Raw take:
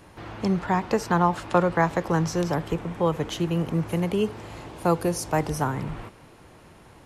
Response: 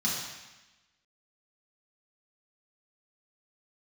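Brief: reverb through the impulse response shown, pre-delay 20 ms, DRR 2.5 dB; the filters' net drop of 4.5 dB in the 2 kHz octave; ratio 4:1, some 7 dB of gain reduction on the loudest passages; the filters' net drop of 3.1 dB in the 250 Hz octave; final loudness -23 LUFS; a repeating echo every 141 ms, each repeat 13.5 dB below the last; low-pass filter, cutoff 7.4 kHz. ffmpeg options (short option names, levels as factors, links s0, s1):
-filter_complex "[0:a]lowpass=7400,equalizer=f=250:t=o:g=-5.5,equalizer=f=2000:t=o:g=-6,acompressor=threshold=0.0562:ratio=4,aecho=1:1:141|282:0.211|0.0444,asplit=2[s0][s1];[1:a]atrim=start_sample=2205,adelay=20[s2];[s1][s2]afir=irnorm=-1:irlink=0,volume=0.299[s3];[s0][s3]amix=inputs=2:normalize=0,volume=1.68"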